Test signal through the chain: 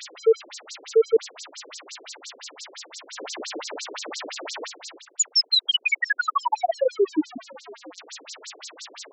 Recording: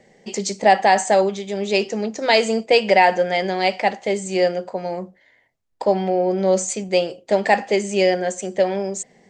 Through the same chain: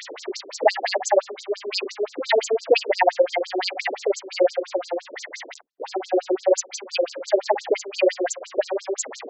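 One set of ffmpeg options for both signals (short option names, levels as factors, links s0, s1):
-af "aeval=exprs='val(0)+0.5*0.0596*sgn(val(0))':c=same,acrusher=bits=8:mix=0:aa=0.5,afftfilt=real='re*between(b*sr/1024,360*pow(5800/360,0.5+0.5*sin(2*PI*5.8*pts/sr))/1.41,360*pow(5800/360,0.5+0.5*sin(2*PI*5.8*pts/sr))*1.41)':imag='im*between(b*sr/1024,360*pow(5800/360,0.5+0.5*sin(2*PI*5.8*pts/sr))/1.41,360*pow(5800/360,0.5+0.5*sin(2*PI*5.8*pts/sr))*1.41)':win_size=1024:overlap=0.75,volume=1.26"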